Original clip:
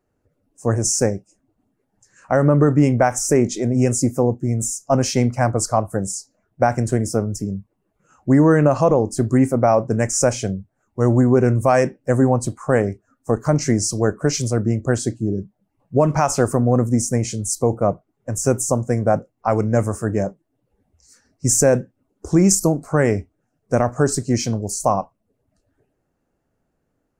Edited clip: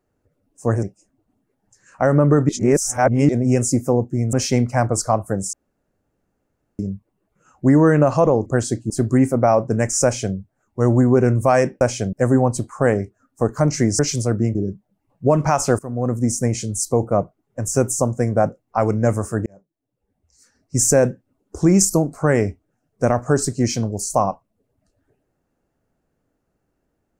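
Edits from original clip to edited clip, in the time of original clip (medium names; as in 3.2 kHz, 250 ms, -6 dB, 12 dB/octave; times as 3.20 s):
0.83–1.13 s: delete
2.79–3.59 s: reverse
4.63–4.97 s: delete
6.17–7.43 s: room tone
10.24–10.56 s: copy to 12.01 s
13.87–14.25 s: delete
14.81–15.25 s: move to 9.10 s
16.49–17.22 s: fade in equal-power, from -21.5 dB
20.16–21.60 s: fade in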